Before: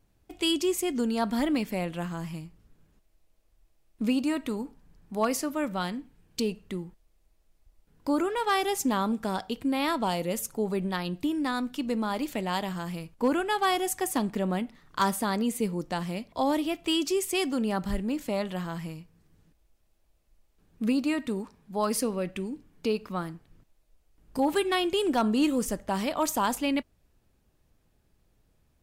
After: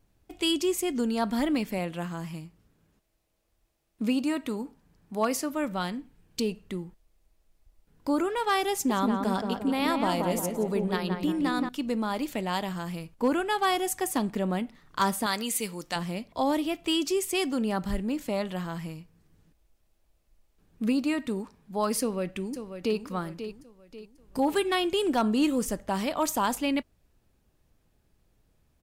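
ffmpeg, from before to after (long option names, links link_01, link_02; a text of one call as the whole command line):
ffmpeg -i in.wav -filter_complex "[0:a]asettb=1/sr,asplit=3[link_01][link_02][link_03];[link_01]atrim=end=1.784[link_04];[link_02]atrim=start=1.78:end=5.53,asetpts=PTS-STARTPTS,afade=type=in:duration=0.004:curve=qsin,afade=type=out:start_time=3.746:duration=0.004:curve=qsin,highpass=frequency=83:poles=1[link_05];[link_03]atrim=start=5.526[link_06];[link_04][link_05]acrossfade=duration=0.004:curve1=hsin:curve2=qsin[link_07];[link_07][link_06]acrossfade=duration=0.004:curve1=qsin:curve2=hsin,asettb=1/sr,asplit=3[link_08][link_09][link_10];[link_08]atrim=end=8.724[link_11];[link_09]atrim=start=8.72:end=11.69,asetpts=PTS-STARTPTS,afade=type=in:duration=0.004:curve=qsin,afade=type=out:start_time=2.966:duration=0.004:curve=qsin,asplit=2[link_12][link_13];[link_13]adelay=175,lowpass=frequency=1700:poles=1,volume=-3.5dB,asplit=2[link_14][link_15];[link_15]adelay=175,lowpass=frequency=1700:poles=1,volume=0.52,asplit=2[link_16][link_17];[link_17]adelay=175,lowpass=frequency=1700:poles=1,volume=0.52,asplit=2[link_18][link_19];[link_19]adelay=175,lowpass=frequency=1700:poles=1,volume=0.52,asplit=2[link_20][link_21];[link_21]adelay=175,lowpass=frequency=1700:poles=1,volume=0.52,asplit=2[link_22][link_23];[link_23]adelay=175,lowpass=frequency=1700:poles=1,volume=0.52,asplit=2[link_24][link_25];[link_25]adelay=175,lowpass=frequency=1700:poles=1,volume=0.52[link_26];[link_12][link_14][link_16][link_18][link_20][link_22][link_24][link_26]amix=inputs=8:normalize=0,atrim=end_sample=130977[link_27];[link_10]atrim=start=11.686[link_28];[link_11][link_27]acrossfade=duration=0.004:curve1=hsin:curve2=qsin[link_29];[link_29][link_28]acrossfade=duration=0.004:curve1=qsin:curve2=hsin,asettb=1/sr,asplit=3[link_30][link_31][link_32];[link_30]atrim=end=15.264[link_33];[link_31]atrim=start=15.26:end=15.96,asetpts=PTS-STARTPTS,afade=type=in:duration=0.004:curve=qsin,afade=type=out:start_time=0.696:duration=0.004:curve=qsin,tiltshelf=frequency=920:gain=-8.5[link_34];[link_32]atrim=start=15.956[link_35];[link_33][link_34]acrossfade=duration=0.004:curve1=hsin:curve2=qsin[link_36];[link_36][link_35]acrossfade=duration=0.004:curve1=qsin:curve2=hsin,asplit=2[link_37][link_38];[link_38]afade=type=in:start_time=21.99:duration=0.01,afade=type=out:start_time=22.98:duration=0.01,aecho=0:1:540|1080|1620|2160:0.334965|0.133986|0.0535945|0.0214378[link_39];[link_37][link_39]amix=inputs=2:normalize=0" out.wav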